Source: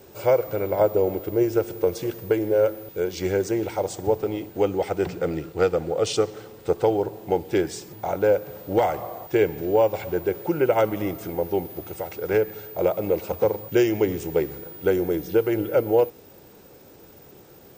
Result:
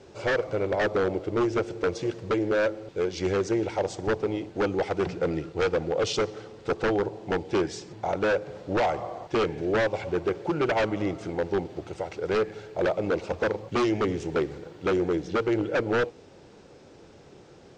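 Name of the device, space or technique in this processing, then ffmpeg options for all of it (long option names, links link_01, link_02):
synthesiser wavefolder: -af "aeval=exprs='0.141*(abs(mod(val(0)/0.141+3,4)-2)-1)':channel_layout=same,lowpass=frequency=6500:width=0.5412,lowpass=frequency=6500:width=1.3066,volume=-1dB"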